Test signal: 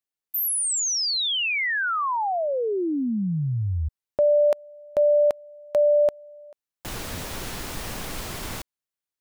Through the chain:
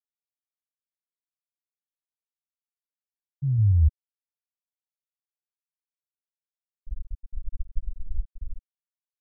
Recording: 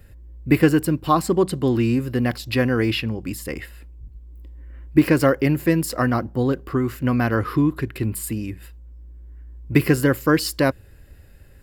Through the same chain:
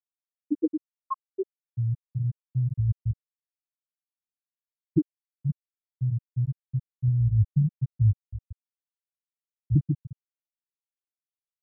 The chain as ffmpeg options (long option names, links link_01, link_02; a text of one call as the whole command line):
ffmpeg -i in.wav -af "asubboost=boost=9.5:cutoff=110,afftfilt=real='re*gte(hypot(re,im),1.78)':imag='im*gte(hypot(re,im),1.78)':win_size=1024:overlap=0.75,volume=-5dB" out.wav